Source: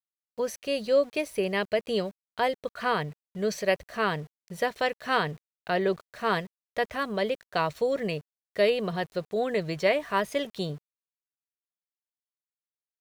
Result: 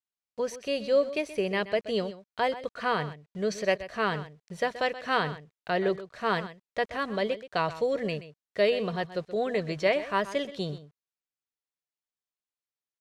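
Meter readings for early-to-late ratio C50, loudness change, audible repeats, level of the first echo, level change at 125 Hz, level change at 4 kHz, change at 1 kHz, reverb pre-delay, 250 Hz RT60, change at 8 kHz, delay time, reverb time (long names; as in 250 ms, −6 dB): no reverb audible, −1.0 dB, 1, −14.5 dB, −1.0 dB, −1.0 dB, −1.0 dB, no reverb audible, no reverb audible, can't be measured, 127 ms, no reverb audible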